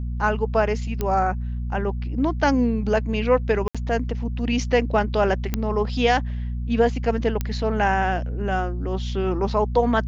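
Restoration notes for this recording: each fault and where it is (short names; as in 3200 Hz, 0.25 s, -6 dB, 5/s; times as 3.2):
hum 60 Hz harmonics 4 -27 dBFS
1.01 pop -11 dBFS
3.68–3.75 gap 66 ms
5.54 pop -9 dBFS
7.41 pop -11 dBFS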